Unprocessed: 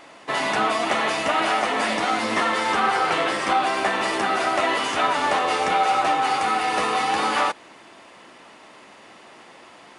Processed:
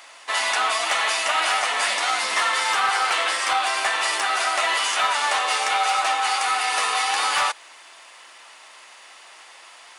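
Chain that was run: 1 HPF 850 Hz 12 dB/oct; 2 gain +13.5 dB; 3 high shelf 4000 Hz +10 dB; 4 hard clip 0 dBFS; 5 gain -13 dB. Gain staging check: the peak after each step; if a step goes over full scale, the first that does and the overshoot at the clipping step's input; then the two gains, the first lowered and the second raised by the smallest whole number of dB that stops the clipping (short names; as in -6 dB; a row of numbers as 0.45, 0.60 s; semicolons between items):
-10.5, +3.0, +4.5, 0.0, -13.0 dBFS; step 2, 4.5 dB; step 2 +8.5 dB, step 5 -8 dB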